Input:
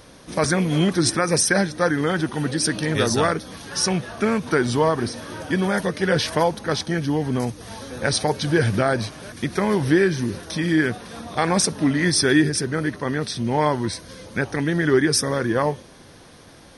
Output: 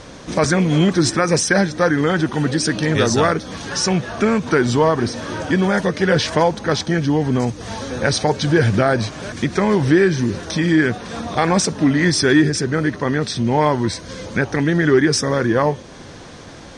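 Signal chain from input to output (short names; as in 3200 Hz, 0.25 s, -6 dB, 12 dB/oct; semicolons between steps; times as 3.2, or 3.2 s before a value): bell 7400 Hz +13.5 dB 0.53 oct; in parallel at 0 dB: compressor, threshold -32 dBFS, peak gain reduction 20.5 dB; on the sum: soft clip -5 dBFS, distortion -23 dB; air absorption 120 m; gain +3.5 dB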